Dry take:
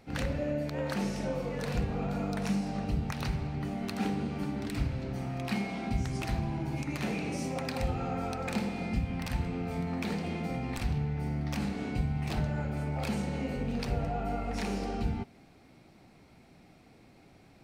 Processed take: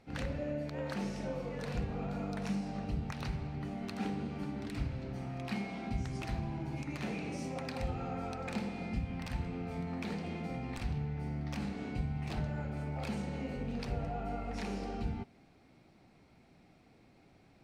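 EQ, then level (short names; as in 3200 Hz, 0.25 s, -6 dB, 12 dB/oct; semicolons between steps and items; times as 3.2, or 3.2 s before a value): high shelf 11000 Hz -11.5 dB; -5.0 dB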